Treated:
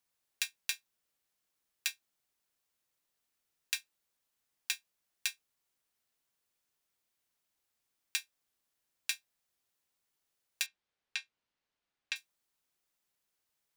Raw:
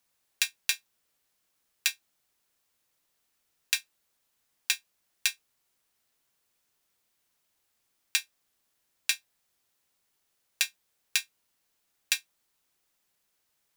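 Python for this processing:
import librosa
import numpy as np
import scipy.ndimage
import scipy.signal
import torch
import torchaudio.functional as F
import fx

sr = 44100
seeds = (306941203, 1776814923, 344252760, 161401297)

y = fx.lowpass(x, sr, hz=3900.0, slope=12, at=(10.66, 12.16))
y = y * 10.0 ** (-7.5 / 20.0)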